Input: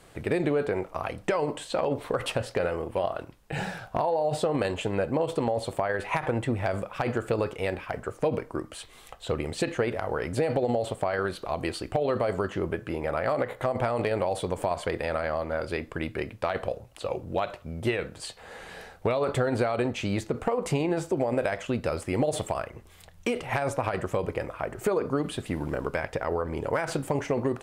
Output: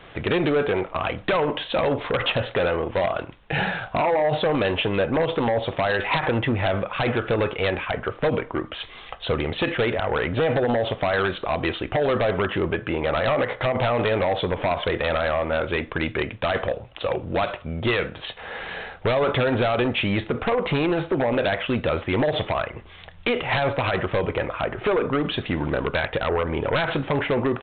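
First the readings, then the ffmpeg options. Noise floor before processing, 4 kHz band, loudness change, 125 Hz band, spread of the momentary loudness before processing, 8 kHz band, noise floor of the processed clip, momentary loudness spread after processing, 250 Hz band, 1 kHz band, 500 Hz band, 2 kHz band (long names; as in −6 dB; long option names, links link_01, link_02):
−52 dBFS, +10.5 dB, +5.5 dB, +5.0 dB, 7 LU, below −35 dB, −44 dBFS, 6 LU, +4.5 dB, +5.5 dB, +5.0 dB, +9.0 dB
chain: -af "tiltshelf=frequency=970:gain=-3.5,aresample=8000,aeval=exprs='0.237*sin(PI/2*3.16*val(0)/0.237)':channel_layout=same,aresample=44100,volume=-4dB"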